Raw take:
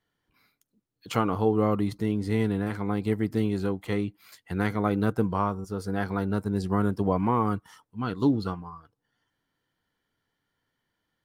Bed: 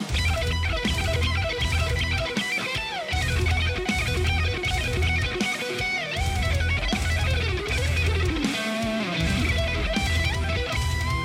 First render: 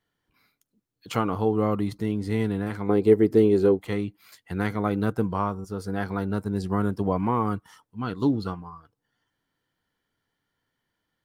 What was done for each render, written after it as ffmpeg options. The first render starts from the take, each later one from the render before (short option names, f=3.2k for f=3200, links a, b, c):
-filter_complex "[0:a]asettb=1/sr,asplit=3[a][b][c];[a]atrim=end=2.894[d];[b]atrim=start=2.89:end=3.79,asetpts=PTS-STARTPTS,afade=t=in:d=0.004:c=qsin,afade=t=out:st=0.896:d=0.004:c=qsin,equalizer=f=410:t=o:w=0.95:g=14[e];[c]atrim=start=3.786[f];[d][e]acrossfade=d=0.004:c1=hsin:c2=qsin[g];[g][f]acrossfade=d=0.004:c1=qsin:c2=hsin"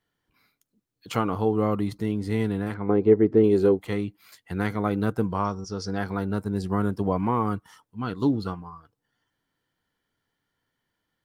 -filter_complex "[0:a]asettb=1/sr,asplit=3[a][b][c];[a]atrim=end=2.744[d];[b]atrim=start=2.74:end=3.44,asetpts=PTS-STARTPTS,afade=t=in:d=0.004:c=qsin,afade=t=out:st=0.696:d=0.004:c=qsin,lowpass=2k[e];[c]atrim=start=3.436[f];[d][e]acrossfade=d=0.004:c1=hsin:c2=qsin[g];[g][f]acrossfade=d=0.004:c1=qsin:c2=hsin,asettb=1/sr,asplit=3[h][i][j];[h]atrim=end=5.444[k];[i]atrim=start=5.44:end=5.98,asetpts=PTS-STARTPTS,afade=t=in:d=0.004:c=qsin,afade=t=out:st=0.536:d=0.004:c=qsin,lowpass=f=5.5k:t=q:w=6.1[l];[j]atrim=start=5.976[m];[k][l]acrossfade=d=0.004:c1=hsin:c2=qsin[n];[n][m]acrossfade=d=0.004:c1=qsin:c2=hsin"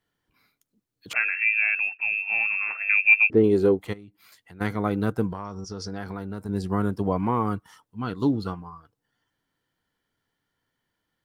-filter_complex "[0:a]asettb=1/sr,asplit=3[a][b][c];[a]atrim=end=1.134[d];[b]atrim=start=1.13:end=3.3,asetpts=PTS-STARTPTS,afade=t=in:d=0.004:c=qsin,afade=t=out:st=2.166:d=0.004:c=qsin,lowpass=f=2.4k:t=q:w=0.5098,lowpass=f=2.4k:t=q:w=0.6013,lowpass=f=2.4k:t=q:w=0.9,lowpass=f=2.4k:t=q:w=2.563,afreqshift=-2800[e];[c]atrim=start=3.296[f];[d][e]acrossfade=d=0.004:c1=hsin:c2=qsin[g];[g][f]acrossfade=d=0.004:c1=qsin:c2=hsin,asplit=3[h][i][j];[h]afade=t=out:st=3.92:d=0.02[k];[i]acompressor=threshold=-50dB:ratio=2.5:attack=3.2:release=140:knee=1:detection=peak,afade=t=in:st=3.92:d=0.02,afade=t=out:st=4.6:d=0.02[l];[j]afade=t=in:st=4.6:d=0.02[m];[k][l][m]amix=inputs=3:normalize=0,asettb=1/sr,asplit=3[n][o][p];[n]atrim=end=5.304[q];[o]atrim=start=5.3:end=6.49,asetpts=PTS-STARTPTS,afade=t=in:d=0.004:c=qsin,afade=t=out:st=1.186:d=0.004:c=qsin,acompressor=threshold=-29dB:ratio=6:attack=3.2:release=140:knee=1:detection=peak[r];[p]atrim=start=6.486[s];[q][r]acrossfade=d=0.004:c1=hsin:c2=qsin[t];[t][s]acrossfade=d=0.004:c1=qsin:c2=hsin"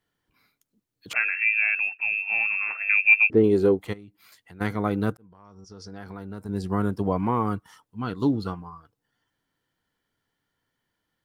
-filter_complex "[0:a]asplit=2[a][b];[a]atrim=end=5.17,asetpts=PTS-STARTPTS,afade=t=out:st=5.166:d=0.004:c=hsin[c];[b]atrim=start=5.17,asetpts=PTS-STARTPTS,afade=t=in:d=1.63[d];[c][d]concat=n=2:v=0:a=1"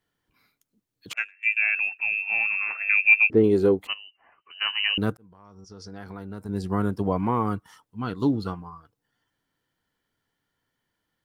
-filter_complex "[0:a]asettb=1/sr,asplit=3[a][b][c];[a]atrim=end=1.134[d];[b]atrim=start=1.13:end=1.57,asetpts=PTS-STARTPTS,afade=t=in:d=0.004:c=qsin,afade=t=out:st=0.436:d=0.004:c=qsin,agate=range=-28dB:threshold=-23dB:ratio=16:release=100:detection=peak[e];[c]atrim=start=1.566[f];[d][e]acrossfade=d=0.004:c1=hsin:c2=qsin[g];[g][f]acrossfade=d=0.004:c1=qsin:c2=hsin,asettb=1/sr,asplit=3[h][i][j];[h]atrim=end=3.874[k];[i]atrim=start=3.87:end=4.98,asetpts=PTS-STARTPTS,afade=t=in:d=0.004:c=qsin,afade=t=out:st=1.106:d=0.004:c=qsin,lowpass=f=2.6k:t=q:w=0.5098,lowpass=f=2.6k:t=q:w=0.6013,lowpass=f=2.6k:t=q:w=0.9,lowpass=f=2.6k:t=q:w=2.563,afreqshift=-3100[l];[j]atrim=start=4.976[m];[k][l]acrossfade=d=0.004:c1=hsin:c2=qsin[n];[n][m]acrossfade=d=0.004:c1=qsin:c2=hsin"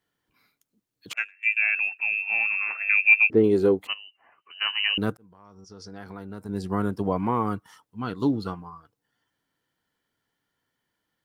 -af "lowshelf=f=75:g=-9"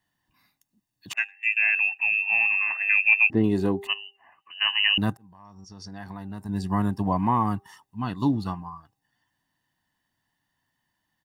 -af "aecho=1:1:1.1:0.73,bandreject=f=397.8:t=h:w=4,bandreject=f=795.6:t=h:w=4"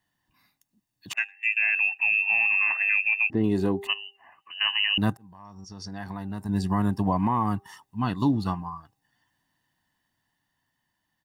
-af "dynaudnorm=f=340:g=11:m=3dB,alimiter=limit=-14dB:level=0:latency=1:release=238"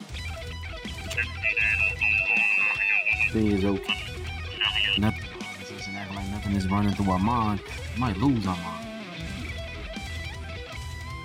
-filter_complex "[1:a]volume=-11dB[a];[0:a][a]amix=inputs=2:normalize=0"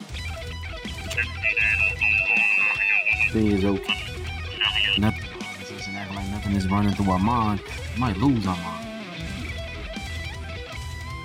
-af "volume=2.5dB"